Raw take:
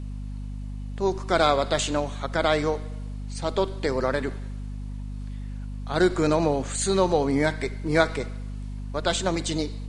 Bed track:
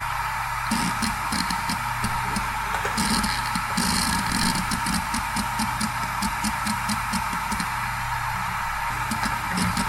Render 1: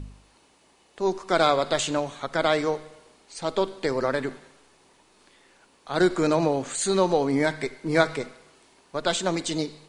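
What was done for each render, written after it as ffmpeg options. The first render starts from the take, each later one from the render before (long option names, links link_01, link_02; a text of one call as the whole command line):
ffmpeg -i in.wav -af "bandreject=frequency=50:width_type=h:width=4,bandreject=frequency=100:width_type=h:width=4,bandreject=frequency=150:width_type=h:width=4,bandreject=frequency=200:width_type=h:width=4,bandreject=frequency=250:width_type=h:width=4" out.wav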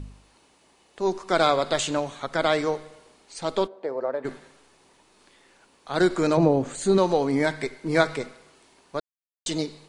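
ffmpeg -i in.wav -filter_complex "[0:a]asplit=3[link_01][link_02][link_03];[link_01]afade=type=out:start_time=3.66:duration=0.02[link_04];[link_02]bandpass=frequency=610:width_type=q:width=1.7,afade=type=in:start_time=3.66:duration=0.02,afade=type=out:start_time=4.24:duration=0.02[link_05];[link_03]afade=type=in:start_time=4.24:duration=0.02[link_06];[link_04][link_05][link_06]amix=inputs=3:normalize=0,asettb=1/sr,asplit=3[link_07][link_08][link_09];[link_07]atrim=end=6.374[link_10];[link_08]atrim=start=6.37:end=6.98,asetpts=PTS-STARTPTS,afade=type=in:duration=0.004:curve=qsin,afade=type=out:start_time=0.606:duration=0.004:curve=qsin,tiltshelf=frequency=860:gain=7[link_11];[link_09]atrim=start=6.976[link_12];[link_10][link_11]acrossfade=duration=0.004:curve1=hsin:curve2=qsin[link_13];[link_13][link_12]acrossfade=duration=0.004:curve1=qsin:curve2=hsin,asplit=3[link_14][link_15][link_16];[link_14]atrim=end=9,asetpts=PTS-STARTPTS,afade=type=out:start_time=8.996:duration=0.004:curve=hsin[link_17];[link_15]atrim=start=9:end=9.46,asetpts=PTS-STARTPTS,volume=0[link_18];[link_16]atrim=start=9.46,asetpts=PTS-STARTPTS,afade=type=in:duration=0.004:curve=hsin[link_19];[link_17][link_18][link_19]concat=n=3:v=0:a=1" out.wav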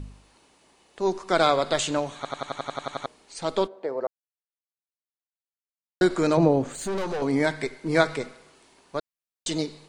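ffmpeg -i in.wav -filter_complex "[0:a]asettb=1/sr,asplit=3[link_01][link_02][link_03];[link_01]atrim=end=6.664[link_04];[link_02]atrim=start=6.66:end=7.22,asetpts=PTS-STARTPTS,afade=type=in:duration=0.004:curve=qsin,afade=type=out:start_time=0.556:duration=0.004:curve=qsin,aeval=exprs='(tanh(20*val(0)+0.35)-tanh(0.35))/20':channel_layout=same[link_05];[link_03]atrim=start=7.216[link_06];[link_04][link_05]acrossfade=duration=0.004:curve1=hsin:curve2=qsin[link_07];[link_07][link_06]acrossfade=duration=0.004:curve1=qsin:curve2=hsin,asplit=13[link_08][link_09][link_10][link_11][link_12][link_13][link_14][link_15][link_16][link_17][link_18][link_19][link_20];[link_08]atrim=end=2.252[link_21];[link_09]atrim=start=2.158:end=2.252[link_22];[link_10]atrim=start=2.158:end=2.252[link_23];[link_11]atrim=start=2.158:end=2.252[link_24];[link_12]atrim=start=2.158:end=2.252[link_25];[link_13]atrim=start=2.158:end=2.252[link_26];[link_14]atrim=start=2.158:end=2.252[link_27];[link_15]atrim=start=2.158:end=2.252[link_28];[link_16]atrim=start=2.158:end=2.252[link_29];[link_17]atrim=start=2.158:end=2.252[link_30];[link_18]atrim=start=3.058:end=4.07,asetpts=PTS-STARTPTS,afade=type=out:start_time=1.008:duration=0.004:curve=hsin[link_31];[link_19]atrim=start=4.07:end=6.01,asetpts=PTS-STARTPTS,volume=0[link_32];[link_20]atrim=start=6.01,asetpts=PTS-STARTPTS,afade=type=in:duration=0.004:curve=hsin[link_33];[link_21][link_22]acrossfade=duration=0.004:curve1=hsin:curve2=hsin[link_34];[link_34][link_23]acrossfade=duration=0.004:curve1=hsin:curve2=hsin[link_35];[link_35][link_24]acrossfade=duration=0.004:curve1=hsin:curve2=hsin[link_36];[link_36][link_25]acrossfade=duration=0.004:curve1=hsin:curve2=hsin[link_37];[link_37][link_26]acrossfade=duration=0.004:curve1=hsin:curve2=hsin[link_38];[link_38][link_27]acrossfade=duration=0.004:curve1=hsin:curve2=hsin[link_39];[link_39][link_28]acrossfade=duration=0.004:curve1=hsin:curve2=hsin[link_40];[link_40][link_29]acrossfade=duration=0.004:curve1=hsin:curve2=hsin[link_41];[link_41][link_30]acrossfade=duration=0.004:curve1=hsin:curve2=hsin[link_42];[link_31][link_32][link_33]concat=n=3:v=0:a=1[link_43];[link_42][link_43]acrossfade=duration=0.004:curve1=hsin:curve2=hsin" out.wav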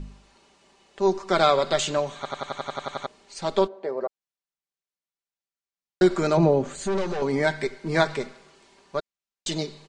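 ffmpeg -i in.wav -af "lowpass=frequency=7900:width=0.5412,lowpass=frequency=7900:width=1.3066,aecho=1:1:5.1:0.5" out.wav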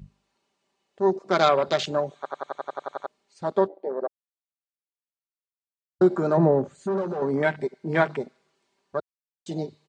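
ffmpeg -i in.wav -af "highpass=88,afwtdn=0.0355" out.wav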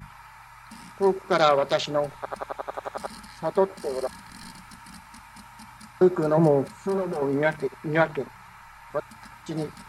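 ffmpeg -i in.wav -i bed.wav -filter_complex "[1:a]volume=-20.5dB[link_01];[0:a][link_01]amix=inputs=2:normalize=0" out.wav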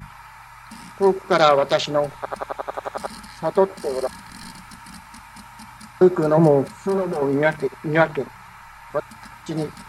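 ffmpeg -i in.wav -af "volume=4.5dB" out.wav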